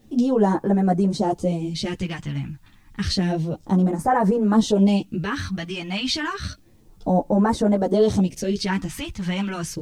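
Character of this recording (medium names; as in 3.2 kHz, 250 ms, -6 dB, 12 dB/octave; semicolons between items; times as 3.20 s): phasing stages 2, 0.3 Hz, lowest notch 470–2900 Hz; a quantiser's noise floor 12-bit, dither triangular; a shimmering, thickened sound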